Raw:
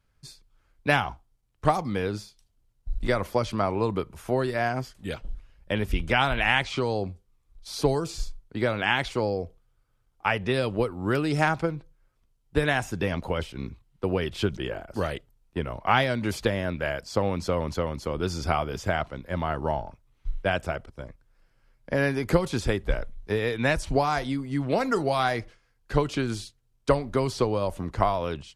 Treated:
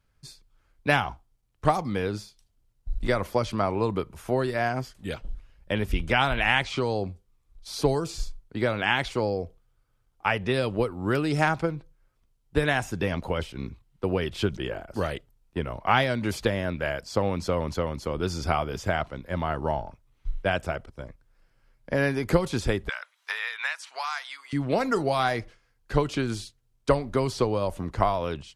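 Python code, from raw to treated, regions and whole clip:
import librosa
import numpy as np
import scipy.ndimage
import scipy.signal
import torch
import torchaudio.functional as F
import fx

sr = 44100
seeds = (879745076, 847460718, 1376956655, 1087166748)

y = fx.chain(x, sr, fx.highpass(hz=1100.0, slope=24),
    fx.high_shelf(hz=10000.0, db=-10.0),
    fx.band_squash(depth_pct=100), at=(22.89, 24.53))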